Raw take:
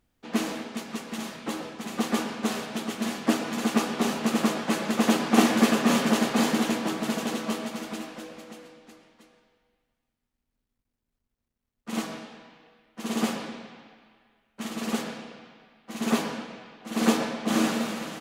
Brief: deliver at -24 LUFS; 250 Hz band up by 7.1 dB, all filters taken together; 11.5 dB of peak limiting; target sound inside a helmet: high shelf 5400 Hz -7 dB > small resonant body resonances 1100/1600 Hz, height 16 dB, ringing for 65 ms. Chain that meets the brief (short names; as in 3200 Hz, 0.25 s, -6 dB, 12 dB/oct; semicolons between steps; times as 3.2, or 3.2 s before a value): bell 250 Hz +8 dB; limiter -12 dBFS; high shelf 5400 Hz -7 dB; small resonant body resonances 1100/1600 Hz, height 16 dB, ringing for 65 ms; gain +0.5 dB